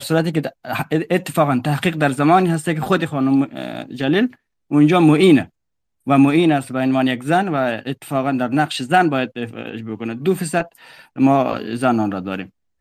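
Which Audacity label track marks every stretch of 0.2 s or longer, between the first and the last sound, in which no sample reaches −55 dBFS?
4.360000	4.700000	silence
5.500000	6.060000	silence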